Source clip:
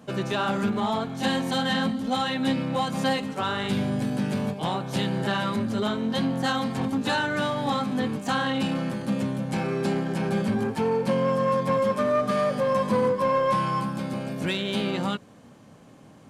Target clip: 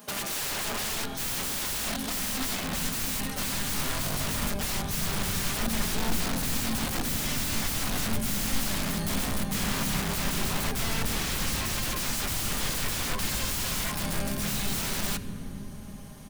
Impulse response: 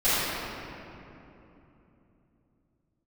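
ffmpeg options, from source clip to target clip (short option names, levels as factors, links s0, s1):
-filter_complex "[0:a]aemphasis=mode=production:type=riaa,bandreject=f=7400:w=6,aecho=1:1:4.9:0.63,aeval=exprs='(mod(22.4*val(0)+1,2)-1)/22.4':c=same,asplit=2[s0][s1];[s1]asubboost=boost=9.5:cutoff=220[s2];[1:a]atrim=start_sample=2205,asetrate=33957,aresample=44100,lowshelf=f=350:g=6[s3];[s2][s3]afir=irnorm=-1:irlink=0,volume=0.0266[s4];[s0][s4]amix=inputs=2:normalize=0"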